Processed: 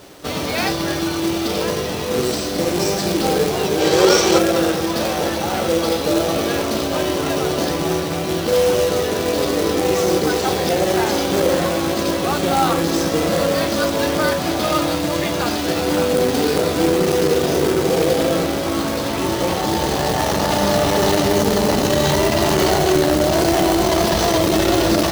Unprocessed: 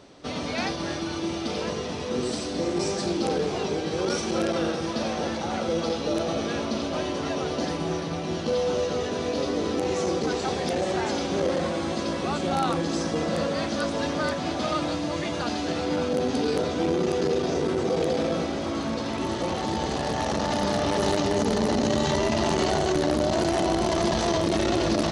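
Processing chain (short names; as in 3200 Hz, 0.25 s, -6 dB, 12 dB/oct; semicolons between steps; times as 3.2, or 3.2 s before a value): companded quantiser 4-bit; on a send at -9.5 dB: reverb RT60 0.40 s, pre-delay 4 ms; on the sum: spectral gain 3.8–4.38, 330–8500 Hz +6 dB; bell 230 Hz -7 dB 0.24 oct; gain +7.5 dB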